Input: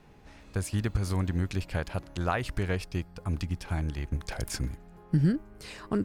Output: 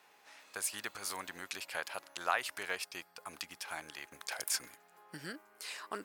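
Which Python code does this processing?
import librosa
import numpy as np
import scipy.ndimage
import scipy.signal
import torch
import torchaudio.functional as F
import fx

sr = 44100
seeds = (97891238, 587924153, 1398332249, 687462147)

y = scipy.signal.sosfilt(scipy.signal.butter(2, 860.0, 'highpass', fs=sr, output='sos'), x)
y = fx.high_shelf(y, sr, hz=9800.0, db=10.0)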